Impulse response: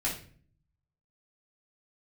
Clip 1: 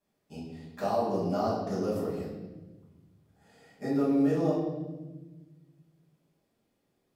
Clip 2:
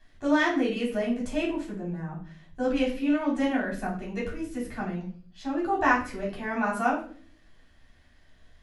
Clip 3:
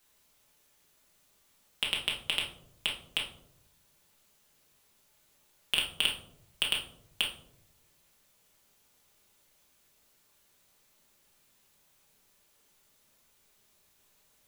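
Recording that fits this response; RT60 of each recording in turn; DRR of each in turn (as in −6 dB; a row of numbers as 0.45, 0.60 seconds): 2; 1.2, 0.45, 0.75 seconds; −10.0, −6.0, −3.0 decibels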